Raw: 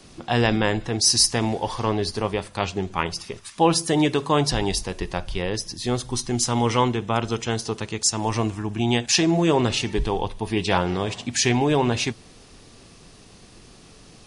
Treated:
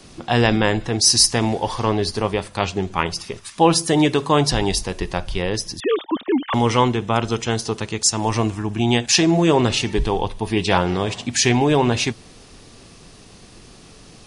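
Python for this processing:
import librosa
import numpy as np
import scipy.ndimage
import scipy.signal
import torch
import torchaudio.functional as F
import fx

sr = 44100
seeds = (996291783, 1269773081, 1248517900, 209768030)

y = fx.sine_speech(x, sr, at=(5.8, 6.54))
y = F.gain(torch.from_numpy(y), 3.5).numpy()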